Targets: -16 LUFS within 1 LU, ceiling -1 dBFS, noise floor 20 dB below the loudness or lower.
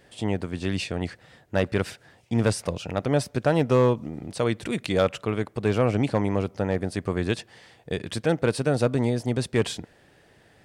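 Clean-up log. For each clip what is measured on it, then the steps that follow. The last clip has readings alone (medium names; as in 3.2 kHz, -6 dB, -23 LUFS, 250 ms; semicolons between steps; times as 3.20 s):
clipped samples 0.2%; clipping level -12.5 dBFS; loudness -26.0 LUFS; peak level -12.5 dBFS; loudness target -16.0 LUFS
-> clip repair -12.5 dBFS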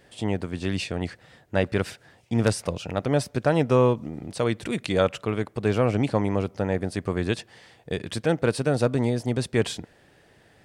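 clipped samples 0.0%; loudness -26.0 LUFS; peak level -6.0 dBFS; loudness target -16.0 LUFS
-> trim +10 dB; peak limiter -1 dBFS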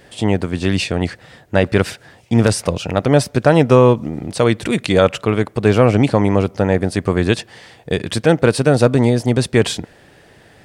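loudness -16.0 LUFS; peak level -1.0 dBFS; noise floor -48 dBFS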